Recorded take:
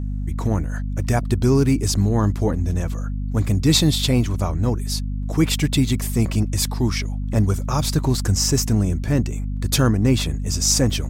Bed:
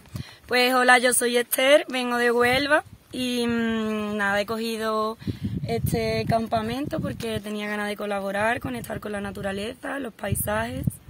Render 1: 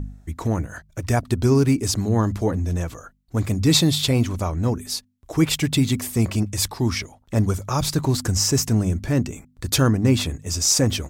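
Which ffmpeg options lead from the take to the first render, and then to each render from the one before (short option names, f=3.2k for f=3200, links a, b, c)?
-af "bandreject=f=50:t=h:w=4,bandreject=f=100:t=h:w=4,bandreject=f=150:t=h:w=4,bandreject=f=200:t=h:w=4,bandreject=f=250:t=h:w=4"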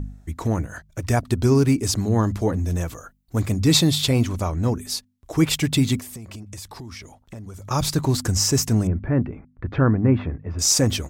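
-filter_complex "[0:a]asettb=1/sr,asplit=3[a][b][c];[a]atrim=end=2.594[d];[b]atrim=start=2.59:end=3.42,asetpts=PTS-STARTPTS,afade=t=in:d=0.004:c=qsin,afade=t=out:st=0.826:d=0.004:c=qsin,highshelf=f=11k:g=9[e];[c]atrim=start=3.416[f];[d][e]acrossfade=d=0.004:c1=hsin:c2=qsin[g];[g][f]acrossfade=d=0.004:c1=qsin:c2=hsin,asettb=1/sr,asplit=3[h][i][j];[h]atrim=end=5.994[k];[i]atrim=start=5.99:end=7.71,asetpts=PTS-STARTPTS,afade=t=in:d=0.004:c=qsin,afade=t=out:st=1.716:d=0.004:c=qsin,acompressor=threshold=-33dB:ratio=16:attack=3.2:release=140:knee=1:detection=peak[l];[j]atrim=start=7.706[m];[k][l]acrossfade=d=0.004:c1=hsin:c2=qsin[n];[n][m]acrossfade=d=0.004:c1=qsin:c2=hsin,asettb=1/sr,asplit=3[o][p][q];[o]atrim=end=8.874[r];[p]atrim=start=8.87:end=10.59,asetpts=PTS-STARTPTS,afade=t=in:d=0.004:c=qsin,afade=t=out:st=1.716:d=0.004:c=qsin,lowpass=f=1.9k:w=0.5412,lowpass=f=1.9k:w=1.3066[s];[q]atrim=start=10.586[t];[r][s]acrossfade=d=0.004:c1=hsin:c2=qsin[u];[u][t]acrossfade=d=0.004:c1=qsin:c2=hsin"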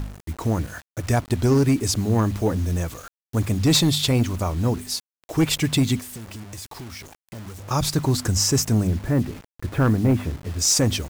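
-af "asoftclip=type=hard:threshold=-12.5dB,acrusher=bits=6:mix=0:aa=0.000001"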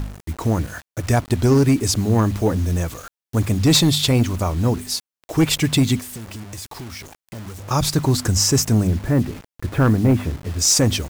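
-af "volume=3dB"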